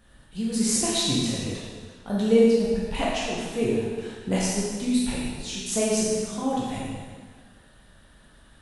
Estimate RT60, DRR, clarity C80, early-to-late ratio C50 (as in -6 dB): 1.6 s, -6.5 dB, 0.5 dB, -1.5 dB